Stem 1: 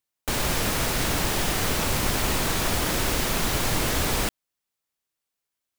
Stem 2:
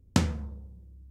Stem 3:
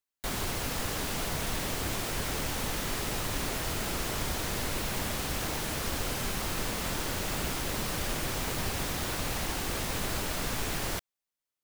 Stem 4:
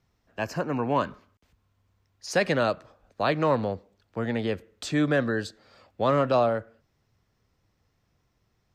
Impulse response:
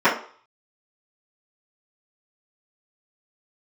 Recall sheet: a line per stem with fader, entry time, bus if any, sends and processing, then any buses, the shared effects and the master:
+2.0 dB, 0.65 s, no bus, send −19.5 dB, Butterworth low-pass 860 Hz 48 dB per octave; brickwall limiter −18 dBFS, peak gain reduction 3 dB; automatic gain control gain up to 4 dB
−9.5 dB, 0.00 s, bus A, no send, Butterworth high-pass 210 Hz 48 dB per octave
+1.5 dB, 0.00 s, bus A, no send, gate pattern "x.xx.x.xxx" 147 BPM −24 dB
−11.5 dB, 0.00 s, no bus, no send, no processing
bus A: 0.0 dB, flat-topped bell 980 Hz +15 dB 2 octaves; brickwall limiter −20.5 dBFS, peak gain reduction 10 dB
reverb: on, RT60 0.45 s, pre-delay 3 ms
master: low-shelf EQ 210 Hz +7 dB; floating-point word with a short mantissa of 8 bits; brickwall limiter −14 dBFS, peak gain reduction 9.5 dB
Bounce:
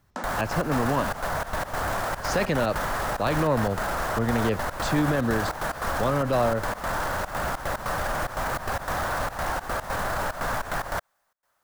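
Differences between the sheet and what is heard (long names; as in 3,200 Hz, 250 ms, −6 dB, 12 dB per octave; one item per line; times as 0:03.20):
stem 1: muted
stem 3 +1.5 dB → +12.5 dB
stem 4 −11.5 dB → +0.5 dB
reverb: off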